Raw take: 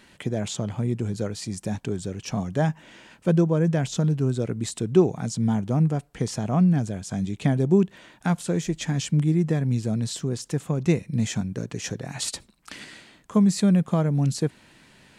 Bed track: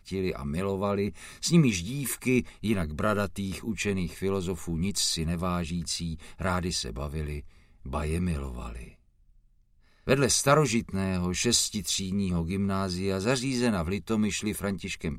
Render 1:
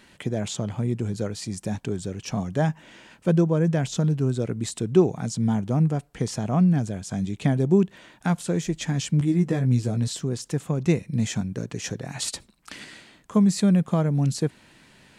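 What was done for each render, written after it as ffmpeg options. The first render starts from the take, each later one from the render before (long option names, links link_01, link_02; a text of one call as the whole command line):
ffmpeg -i in.wav -filter_complex "[0:a]asettb=1/sr,asplit=3[link_01][link_02][link_03];[link_01]atrim=end=9.194[link_04];[link_02]atrim=start=9.19:end=10.08,asetpts=PTS-STARTPTS,afade=type=in:duration=0.004:curve=qsin,afade=type=out:start_time=0.886:duration=0.004:curve=qsin,asplit=2[link_05][link_06];[link_06]adelay=16,volume=-5.5dB[link_07];[link_05][link_07]amix=inputs=2:normalize=0,atrim=end_sample=39249[link_08];[link_03]atrim=start=10.076[link_09];[link_04][link_08]acrossfade=duration=0.004:curve1=hsin:curve2=qsin[link_10];[link_10][link_09]acrossfade=duration=0.004:curve1=qsin:curve2=hsin" out.wav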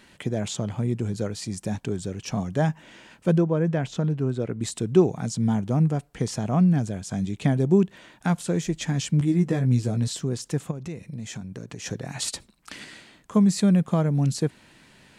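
ffmpeg -i in.wav -filter_complex "[0:a]asettb=1/sr,asplit=3[link_01][link_02][link_03];[link_01]atrim=end=3.384[link_04];[link_02]atrim=start=3.38:end=4.61,asetpts=PTS-STARTPTS,afade=type=in:duration=0.004:curve=qsin,afade=type=out:start_time=1.226:duration=0.004:curve=qsin,bass=frequency=250:gain=-3,treble=frequency=4000:gain=-11[link_05];[link_03]atrim=start=4.606[link_06];[link_04][link_05]acrossfade=duration=0.004:curve1=hsin:curve2=qsin[link_07];[link_07][link_06]acrossfade=duration=0.004:curve1=qsin:curve2=hsin,asplit=3[link_08][link_09][link_10];[link_08]afade=type=out:start_time=10.7:duration=0.02[link_11];[link_09]acompressor=threshold=-33dB:ratio=4:attack=3.2:release=140:knee=1:detection=peak,afade=type=in:start_time=10.7:duration=0.02,afade=type=out:start_time=11.85:duration=0.02[link_12];[link_10]afade=type=in:start_time=11.85:duration=0.02[link_13];[link_11][link_12][link_13]amix=inputs=3:normalize=0" out.wav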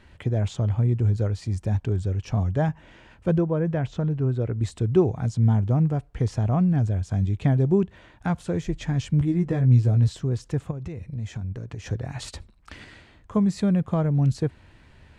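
ffmpeg -i in.wav -af "lowpass=frequency=1900:poles=1,lowshelf=frequency=120:width_type=q:width=1.5:gain=12.5" out.wav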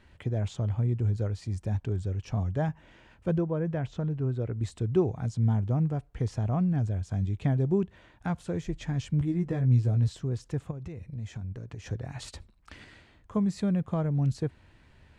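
ffmpeg -i in.wav -af "volume=-5.5dB" out.wav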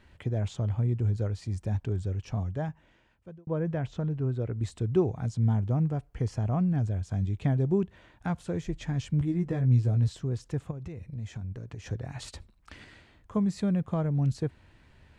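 ffmpeg -i in.wav -filter_complex "[0:a]asettb=1/sr,asplit=3[link_01][link_02][link_03];[link_01]atrim=end=6.054[link_04];[link_02]atrim=start=6.05:end=6.7,asetpts=PTS-STARTPTS,afade=type=in:duration=0.004:curve=qsin,afade=type=out:start_time=0.646:duration=0.004:curve=qsin,bandreject=frequency=3700:width=7.8[link_05];[link_03]atrim=start=6.696[link_06];[link_04][link_05]acrossfade=duration=0.004:curve1=hsin:curve2=qsin[link_07];[link_07][link_06]acrossfade=duration=0.004:curve1=qsin:curve2=hsin,asplit=2[link_08][link_09];[link_08]atrim=end=3.47,asetpts=PTS-STARTPTS,afade=type=out:start_time=2.14:duration=1.33[link_10];[link_09]atrim=start=3.47,asetpts=PTS-STARTPTS,afade=type=in:duration=0.004:curve=hsin[link_11];[link_10][link_11]concat=n=2:v=0:a=1" out.wav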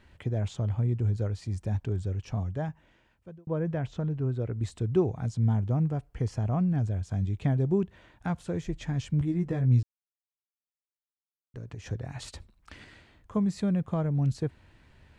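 ffmpeg -i in.wav -filter_complex "[0:a]asplit=3[link_01][link_02][link_03];[link_01]atrim=end=9.83,asetpts=PTS-STARTPTS,afade=type=out:start_time=9.826:duration=0.004:curve=hsin[link_04];[link_02]atrim=start=9.83:end=11.54,asetpts=PTS-STARTPTS,volume=0[link_05];[link_03]atrim=start=11.54,asetpts=PTS-STARTPTS,afade=type=in:duration=0.004:curve=hsin[link_06];[link_04][link_05][link_06]concat=n=3:v=0:a=1" out.wav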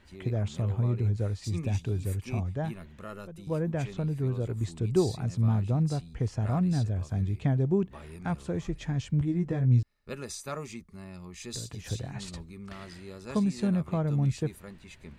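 ffmpeg -i in.wav -i bed.wav -filter_complex "[1:a]volume=-15.5dB[link_01];[0:a][link_01]amix=inputs=2:normalize=0" out.wav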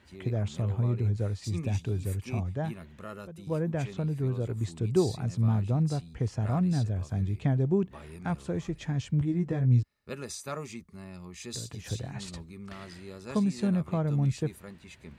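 ffmpeg -i in.wav -af "highpass=61" out.wav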